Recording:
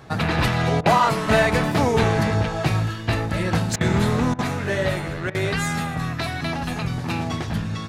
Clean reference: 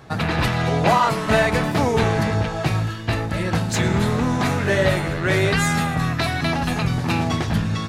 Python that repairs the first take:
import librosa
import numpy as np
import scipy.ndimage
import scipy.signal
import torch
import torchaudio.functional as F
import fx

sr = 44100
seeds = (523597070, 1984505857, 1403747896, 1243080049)

y = fx.fix_declip(x, sr, threshold_db=-8.0)
y = fx.fix_interpolate(y, sr, at_s=(0.81, 3.76, 4.34, 5.3), length_ms=46.0)
y = fx.gain(y, sr, db=fx.steps((0.0, 0.0), (4.41, 4.5)))